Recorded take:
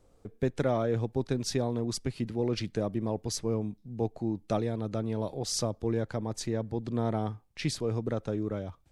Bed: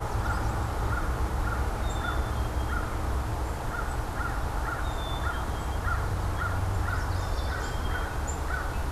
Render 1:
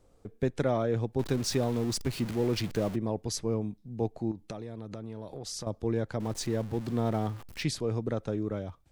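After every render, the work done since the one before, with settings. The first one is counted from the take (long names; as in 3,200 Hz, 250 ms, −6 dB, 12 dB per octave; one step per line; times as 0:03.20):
0:01.19–0:02.96: converter with a step at zero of −36.5 dBFS
0:04.31–0:05.67: downward compressor, threshold −35 dBFS
0:06.20–0:07.63: converter with a step at zero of −41 dBFS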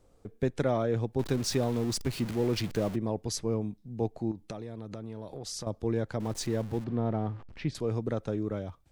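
0:06.84–0:07.75: head-to-tape spacing loss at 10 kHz 30 dB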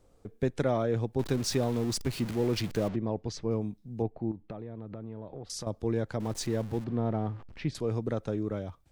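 0:02.88–0:03.51: high-frequency loss of the air 140 metres
0:04.02–0:05.50: high-frequency loss of the air 480 metres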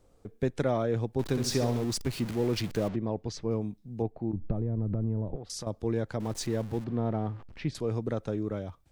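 0:01.28–0:01.84: flutter between parallel walls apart 11.3 metres, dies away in 0.5 s
0:04.33–0:05.36: spectral tilt −4.5 dB per octave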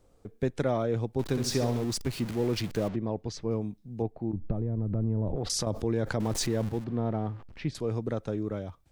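0:00.81–0:01.26: notch filter 1,700 Hz
0:04.95–0:06.69: envelope flattener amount 70%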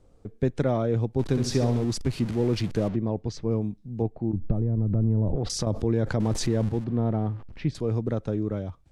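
Bessel low-pass filter 9,300 Hz, order 4
low-shelf EQ 380 Hz +6.5 dB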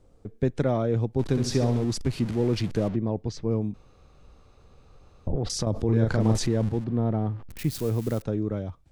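0:03.74–0:05.27: fill with room tone
0:05.85–0:06.38: double-tracking delay 36 ms −2.5 dB
0:07.50–0:08.22: spike at every zero crossing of −29.5 dBFS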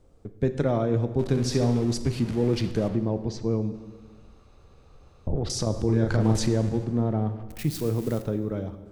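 dense smooth reverb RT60 1.6 s, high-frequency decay 0.75×, DRR 9.5 dB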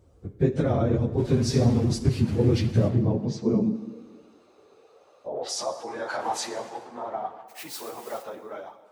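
random phases in long frames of 50 ms
high-pass filter sweep 66 Hz → 830 Hz, 0:02.09–0:05.81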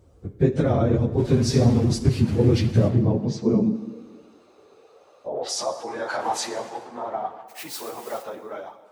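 level +3 dB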